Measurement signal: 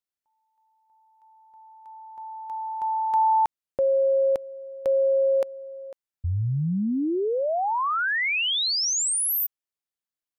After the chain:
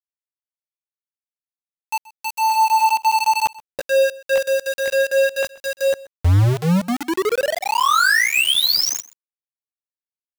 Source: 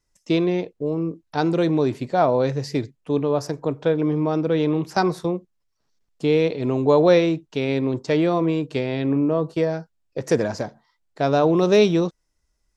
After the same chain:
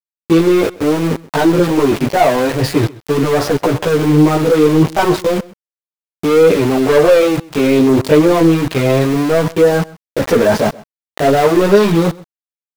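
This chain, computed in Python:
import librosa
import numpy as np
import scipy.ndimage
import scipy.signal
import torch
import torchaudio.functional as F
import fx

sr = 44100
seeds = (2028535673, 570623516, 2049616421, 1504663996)

p1 = scipy.signal.sosfilt(scipy.signal.bessel(4, 2800.0, 'lowpass', norm='mag', fs=sr, output='sos'), x)
p2 = fx.low_shelf(p1, sr, hz=410.0, db=-5.0)
p3 = fx.leveller(p2, sr, passes=3)
p4 = fx.over_compress(p3, sr, threshold_db=-24.0, ratio=-1.0)
p5 = p3 + (p4 * 10.0 ** (3.0 / 20.0))
p6 = fx.leveller(p5, sr, passes=1)
p7 = fx.chorus_voices(p6, sr, voices=2, hz=0.31, base_ms=15, depth_ms=5.0, mix_pct=55)
p8 = np.where(np.abs(p7) >= 10.0 ** (-19.5 / 20.0), p7, 0.0)
y = p8 + 10.0 ** (-21.5 / 20.0) * np.pad(p8, (int(129 * sr / 1000.0), 0))[:len(p8)]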